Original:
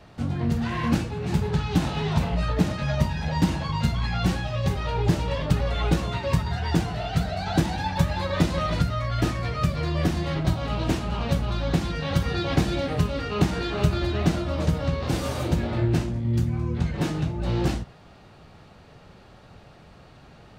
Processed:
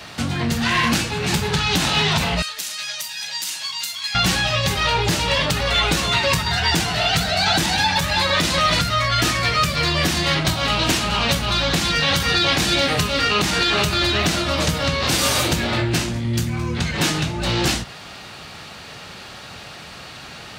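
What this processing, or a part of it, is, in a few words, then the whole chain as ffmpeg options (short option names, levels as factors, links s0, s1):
mastering chain: -filter_complex "[0:a]highpass=50,equalizer=f=230:t=o:w=1.4:g=2.5,acompressor=threshold=0.0316:ratio=1.5,asoftclip=type=tanh:threshold=0.15,tiltshelf=f=1100:g=-9.5,alimiter=level_in=11.2:limit=0.891:release=50:level=0:latency=1,asettb=1/sr,asplit=3[s0][s1][s2];[s0]atrim=end=2.424[s3];[s1]atrim=start=2.42:end=4.15,asetpts=PTS-STARTPTS,afade=t=in:d=0.004:c=qsin,afade=t=out:st=1.726:d=0.004:c=qsin,aderivative[s4];[s2]atrim=start=4.146[s5];[s3][s4]acrossfade=d=0.004:c1=hsin:c2=qsin[s6];[s6][s5]acrossfade=d=0.004:c1=qsin:c2=hsin,volume=0.447"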